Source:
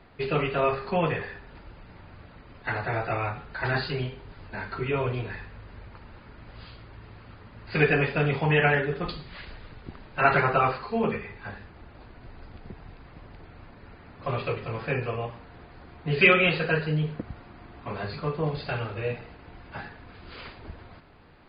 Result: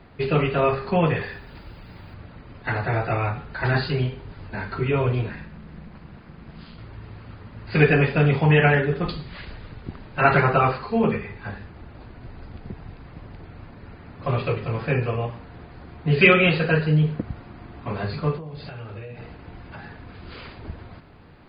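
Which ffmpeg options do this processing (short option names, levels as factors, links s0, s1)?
-filter_complex "[0:a]asettb=1/sr,asplit=3[s0][s1][s2];[s0]atrim=end=1.164[s3];[s1]atrim=start=1.16:end=2.14,asetpts=PTS-STARTPTS,afade=t=in:d=0.004:c=qsin,afade=t=out:st=0.976:d=0.004:c=qsin,aemphasis=mode=production:type=75fm[s4];[s2]atrim=start=2.136[s5];[s3][s4]acrossfade=d=0.004:c1=hsin:c2=qsin[s6];[s6][s5]acrossfade=d=0.004:c1=qsin:c2=hsin,asettb=1/sr,asplit=3[s7][s8][s9];[s7]atrim=end=5.294[s10];[s8]atrim=start=5.29:end=6.78,asetpts=PTS-STARTPTS,afade=t=in:d=0.004:c=qsin,afade=t=out:st=1.486:d=0.004:c=qsin,aeval=exprs='val(0)*sin(2*PI*110*n/s)':c=same[s11];[s9]atrim=start=6.776[s12];[s10][s11]acrossfade=d=0.004:c1=hsin:c2=qsin[s13];[s13][s12]acrossfade=d=0.004:c1=qsin:c2=hsin,asettb=1/sr,asplit=3[s14][s15][s16];[s14]atrim=end=18.374[s17];[s15]atrim=start=18.37:end=20.58,asetpts=PTS-STARTPTS,afade=t=in:d=0.004:c=qsin,afade=t=out:st=2.206:d=0.004:c=qsin,acompressor=threshold=0.0126:ratio=20:attack=3.2:release=140:knee=1:detection=peak[s18];[s16]atrim=start=20.576[s19];[s17][s18]acrossfade=d=0.004:c1=hsin:c2=qsin[s20];[s20][s19]acrossfade=d=0.004:c1=qsin:c2=hsin,equalizer=f=130:w=0.45:g=5.5,volume=1.33"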